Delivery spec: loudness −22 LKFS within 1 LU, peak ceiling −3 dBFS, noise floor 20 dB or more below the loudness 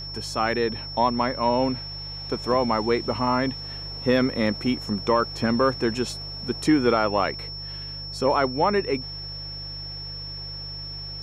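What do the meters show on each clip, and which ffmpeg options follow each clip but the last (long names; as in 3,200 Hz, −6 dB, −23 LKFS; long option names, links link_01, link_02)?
mains hum 50 Hz; hum harmonics up to 150 Hz; level of the hum −38 dBFS; interfering tone 5,400 Hz; level of the tone −34 dBFS; integrated loudness −25.0 LKFS; sample peak −8.5 dBFS; target loudness −22.0 LKFS
→ -af "bandreject=frequency=50:width_type=h:width=4,bandreject=frequency=100:width_type=h:width=4,bandreject=frequency=150:width_type=h:width=4"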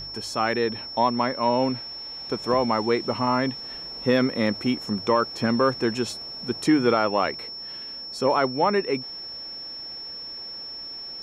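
mains hum none found; interfering tone 5,400 Hz; level of the tone −34 dBFS
→ -af "bandreject=frequency=5400:width=30"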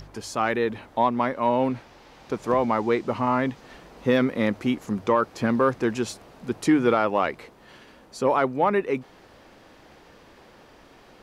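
interfering tone none found; integrated loudness −24.5 LKFS; sample peak −9.0 dBFS; target loudness −22.0 LKFS
→ -af "volume=2.5dB"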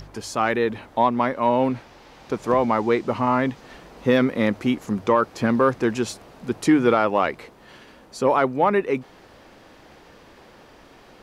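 integrated loudness −22.0 LKFS; sample peak −6.5 dBFS; background noise floor −50 dBFS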